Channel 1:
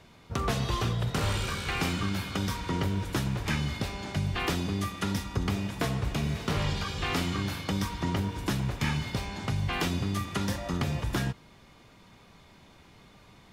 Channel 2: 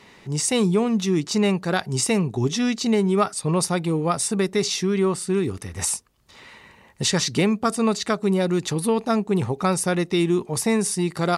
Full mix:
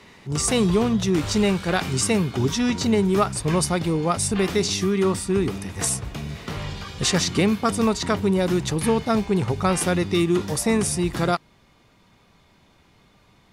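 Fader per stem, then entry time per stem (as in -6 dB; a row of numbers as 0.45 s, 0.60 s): -2.0 dB, 0.0 dB; 0.00 s, 0.00 s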